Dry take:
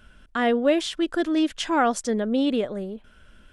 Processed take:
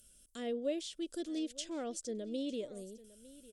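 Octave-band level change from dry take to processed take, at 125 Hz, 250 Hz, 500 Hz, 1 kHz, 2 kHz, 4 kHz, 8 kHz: n/a, -16.0 dB, -15.0 dB, -25.5 dB, -24.5 dB, -14.5 dB, -9.0 dB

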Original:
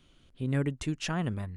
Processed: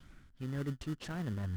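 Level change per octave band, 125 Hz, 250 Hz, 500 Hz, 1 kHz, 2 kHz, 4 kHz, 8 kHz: -6.0, -7.0, -8.5, -9.5, -9.0, -10.5, -12.5 dB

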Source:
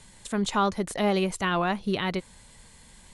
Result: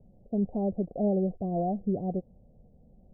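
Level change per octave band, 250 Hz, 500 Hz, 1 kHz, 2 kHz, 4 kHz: -0.5 dB, -2.5 dB, -9.5 dB, under -40 dB, under -40 dB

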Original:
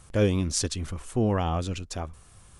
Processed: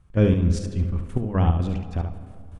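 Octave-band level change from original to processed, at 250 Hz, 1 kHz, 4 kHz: +4.0, -0.5, -8.5 dB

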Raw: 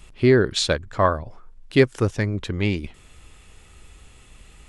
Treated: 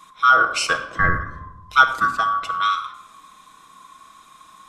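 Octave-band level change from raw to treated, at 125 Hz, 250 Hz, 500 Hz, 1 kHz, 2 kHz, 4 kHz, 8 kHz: -10.0, -14.5, -12.5, +11.5, +10.0, +0.5, +1.0 dB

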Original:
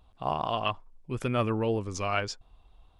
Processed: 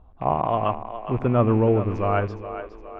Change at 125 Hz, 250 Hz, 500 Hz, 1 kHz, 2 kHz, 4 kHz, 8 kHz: +10.0 dB, +9.0 dB, +8.5 dB, +7.0 dB, -0.5 dB, n/a, under -20 dB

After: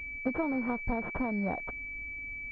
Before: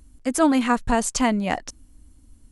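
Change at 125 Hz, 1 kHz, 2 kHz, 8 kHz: -6.5 dB, -14.0 dB, -4.0 dB, under -40 dB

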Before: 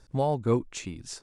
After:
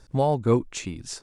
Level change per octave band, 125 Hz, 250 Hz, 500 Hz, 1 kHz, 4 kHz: +4.0, +4.0, +4.0, +4.0, +4.0 dB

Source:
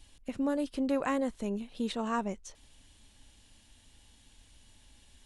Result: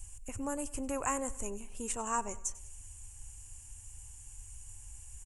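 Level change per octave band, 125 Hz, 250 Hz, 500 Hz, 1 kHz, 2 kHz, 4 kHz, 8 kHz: -1.0, -9.0, -5.5, 0.0, -3.0, -8.0, +14.5 dB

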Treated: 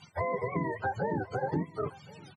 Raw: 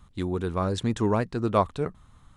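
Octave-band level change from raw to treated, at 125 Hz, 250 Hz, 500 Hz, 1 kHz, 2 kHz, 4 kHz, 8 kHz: -7.5 dB, -8.0 dB, -5.5 dB, -4.0 dB, +2.0 dB, under -15 dB, under -15 dB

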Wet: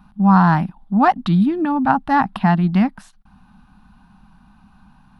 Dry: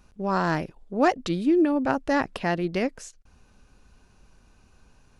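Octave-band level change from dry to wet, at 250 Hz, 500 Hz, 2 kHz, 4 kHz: +8.5, -2.0, +5.0, +1.5 dB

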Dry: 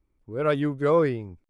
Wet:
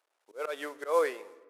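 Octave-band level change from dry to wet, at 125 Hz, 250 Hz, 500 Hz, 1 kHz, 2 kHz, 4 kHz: under -40 dB, -19.5 dB, -7.5 dB, -4.0 dB, -3.5 dB, -3.5 dB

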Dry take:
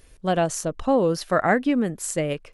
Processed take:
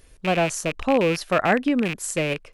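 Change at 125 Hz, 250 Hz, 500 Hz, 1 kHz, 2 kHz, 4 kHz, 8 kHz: 0.0, 0.0, 0.0, 0.0, +3.5, +4.5, 0.0 dB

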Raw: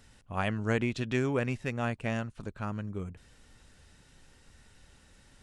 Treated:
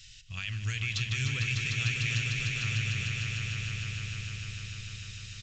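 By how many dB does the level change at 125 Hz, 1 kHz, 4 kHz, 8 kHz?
+4.5, -11.0, +13.5, +13.5 dB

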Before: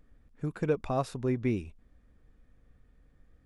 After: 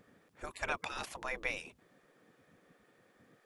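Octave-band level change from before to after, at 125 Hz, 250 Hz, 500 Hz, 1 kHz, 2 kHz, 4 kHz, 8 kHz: -22.5, -20.5, -13.0, -3.5, +7.0, +5.5, +3.0 dB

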